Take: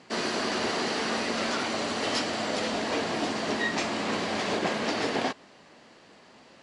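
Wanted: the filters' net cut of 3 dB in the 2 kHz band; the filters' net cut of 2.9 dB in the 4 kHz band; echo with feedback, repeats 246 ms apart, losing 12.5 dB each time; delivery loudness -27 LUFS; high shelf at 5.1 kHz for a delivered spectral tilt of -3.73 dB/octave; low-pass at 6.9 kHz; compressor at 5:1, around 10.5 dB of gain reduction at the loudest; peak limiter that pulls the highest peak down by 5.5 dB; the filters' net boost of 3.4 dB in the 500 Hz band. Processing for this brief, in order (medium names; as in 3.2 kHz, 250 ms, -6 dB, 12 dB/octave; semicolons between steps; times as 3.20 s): low-pass 6.9 kHz; peaking EQ 500 Hz +4.5 dB; peaking EQ 2 kHz -3.5 dB; peaking EQ 4 kHz -4 dB; treble shelf 5.1 kHz +4 dB; compression 5:1, threshold -35 dBFS; peak limiter -29.5 dBFS; feedback delay 246 ms, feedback 24%, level -12.5 dB; trim +11.5 dB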